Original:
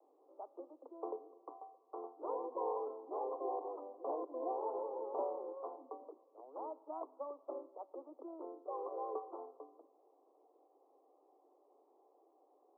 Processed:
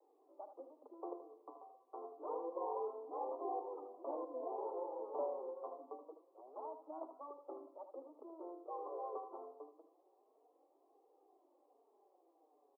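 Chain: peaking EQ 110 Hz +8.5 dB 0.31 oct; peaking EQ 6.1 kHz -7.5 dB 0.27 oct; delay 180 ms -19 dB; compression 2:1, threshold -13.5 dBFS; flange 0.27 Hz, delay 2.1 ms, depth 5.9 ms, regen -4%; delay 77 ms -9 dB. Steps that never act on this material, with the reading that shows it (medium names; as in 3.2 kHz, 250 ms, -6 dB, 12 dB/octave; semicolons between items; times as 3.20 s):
peaking EQ 110 Hz: input has nothing below 240 Hz; peaking EQ 6.1 kHz: input has nothing above 1.3 kHz; compression, threshold -13.5 dBFS: peak at its input -26.5 dBFS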